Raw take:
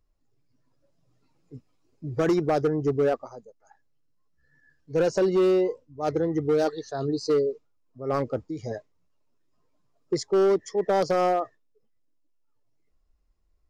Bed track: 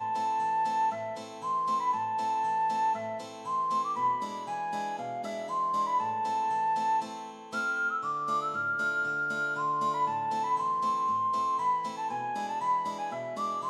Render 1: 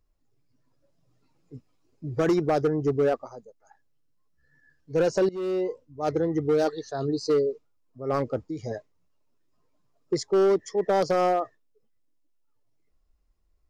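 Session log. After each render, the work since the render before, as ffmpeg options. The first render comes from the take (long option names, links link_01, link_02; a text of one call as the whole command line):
ffmpeg -i in.wav -filter_complex "[0:a]asplit=2[link_01][link_02];[link_01]atrim=end=5.29,asetpts=PTS-STARTPTS,afade=type=out:start_time=5.286:duration=0.004:curve=hsin:silence=0.125893[link_03];[link_02]atrim=start=5.29,asetpts=PTS-STARTPTS,afade=type=in:duration=0.56:silence=0.125893[link_04];[link_03][link_04]concat=n=2:v=0:a=1" out.wav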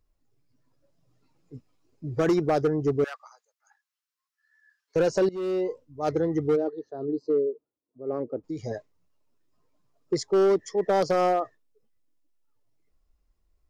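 ffmpeg -i in.wav -filter_complex "[0:a]asettb=1/sr,asplit=3[link_01][link_02][link_03];[link_01]atrim=end=3.044[link_04];[link_02]atrim=start=3.04:end=4.96,asetpts=PTS-STARTPTS,afade=type=in:duration=0.004:curve=qsin,afade=type=out:start_time=1.916:duration=0.004:curve=qsin,highpass=frequency=1100:width=0.5412,highpass=frequency=1100:width=1.3066[link_05];[link_03]atrim=start=4.956[link_06];[link_04][link_05]acrossfade=duration=0.004:curve1=hsin:curve2=qsin[link_07];[link_07][link_06]acrossfade=duration=0.004:curve1=qsin:curve2=hsin,asplit=3[link_08][link_09][link_10];[link_08]afade=type=out:start_time=6.55:duration=0.02[link_11];[link_09]bandpass=frequency=360:width_type=q:width=1.5,afade=type=in:start_time=6.55:duration=0.02,afade=type=out:start_time=8.43:duration=0.02[link_12];[link_10]afade=type=in:start_time=8.43:duration=0.02[link_13];[link_11][link_12][link_13]amix=inputs=3:normalize=0" out.wav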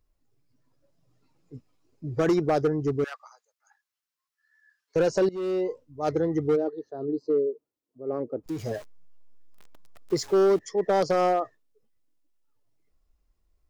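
ffmpeg -i in.wav -filter_complex "[0:a]asettb=1/sr,asplit=3[link_01][link_02][link_03];[link_01]atrim=end=2.724[link_04];[link_02]atrim=start=2.72:end=3.12,asetpts=PTS-STARTPTS,afade=type=in:duration=0.004:curve=qsin,afade=type=out:start_time=0.396:duration=0.004:curve=qsin,equalizer=frequency=620:width=1.5:gain=-6[link_05];[link_03]atrim=start=3.116[link_06];[link_04][link_05]acrossfade=duration=0.004:curve1=hsin:curve2=qsin[link_07];[link_07][link_06]acrossfade=duration=0.004:curve1=qsin:curve2=hsin,asettb=1/sr,asplit=3[link_08][link_09][link_10];[link_08]atrim=end=8.464[link_11];[link_09]atrim=start=8.46:end=10.59,asetpts=PTS-STARTPTS,afade=type=in:duration=0.004:curve=qsin,afade=type=out:start_time=2.126:duration=0.004:curve=qsin,aeval=exprs='val(0)+0.5*0.0106*sgn(val(0))':channel_layout=same[link_12];[link_10]atrim=start=10.586[link_13];[link_11][link_12]acrossfade=duration=0.004:curve1=hsin:curve2=qsin[link_14];[link_14][link_13]acrossfade=duration=0.004:curve1=qsin:curve2=hsin" out.wav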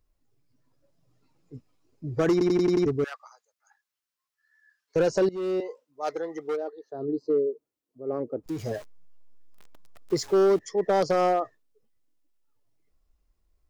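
ffmpeg -i in.wav -filter_complex "[0:a]asettb=1/sr,asplit=3[link_01][link_02][link_03];[link_01]atrim=end=5.604[link_04];[link_02]atrim=start=5.6:end=6.92,asetpts=PTS-STARTPTS,afade=type=in:duration=0.004:curve=qsin,afade=type=out:start_time=1.316:duration=0.004:curve=qsin,highpass=600[link_05];[link_03]atrim=start=6.916[link_06];[link_04][link_05]acrossfade=duration=0.004:curve1=hsin:curve2=qsin[link_07];[link_07][link_06]acrossfade=duration=0.004:curve1=qsin:curve2=hsin,asplit=7[link_08][link_09][link_10][link_11][link_12][link_13][link_14];[link_08]atrim=end=2.412[link_15];[link_09]atrim=start=2.318:end=2.412[link_16];[link_10]atrim=start=2.318:end=2.412[link_17];[link_11]atrim=start=2.318:end=2.412[link_18];[link_12]atrim=start=2.318:end=2.412[link_19];[link_13]atrim=start=2.318:end=2.412[link_20];[link_14]atrim=start=2.858[link_21];[link_15][link_16]acrossfade=duration=0.004:curve1=hsin:curve2=hsin[link_22];[link_22][link_17]acrossfade=duration=0.004:curve1=hsin:curve2=hsin[link_23];[link_23][link_18]acrossfade=duration=0.004:curve1=hsin:curve2=hsin[link_24];[link_24][link_19]acrossfade=duration=0.004:curve1=hsin:curve2=hsin[link_25];[link_25][link_20]acrossfade=duration=0.004:curve1=hsin:curve2=hsin[link_26];[link_26][link_21]acrossfade=duration=0.004:curve1=hsin:curve2=hsin" out.wav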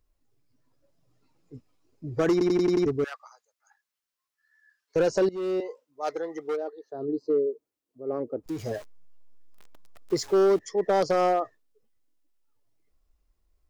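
ffmpeg -i in.wav -af "equalizer=frequency=150:width_type=o:width=0.89:gain=-3" out.wav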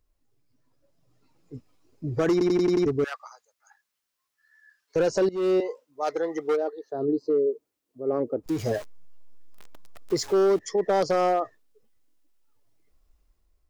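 ffmpeg -i in.wav -af "dynaudnorm=framelen=880:gausssize=3:maxgain=5.5dB,alimiter=limit=-16.5dB:level=0:latency=1:release=175" out.wav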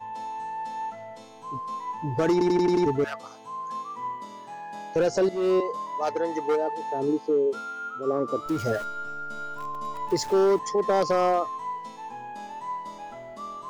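ffmpeg -i in.wav -i bed.wav -filter_complex "[1:a]volume=-5dB[link_01];[0:a][link_01]amix=inputs=2:normalize=0" out.wav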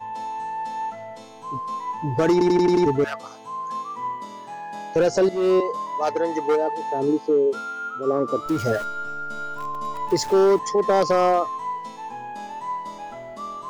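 ffmpeg -i in.wav -af "volume=4dB" out.wav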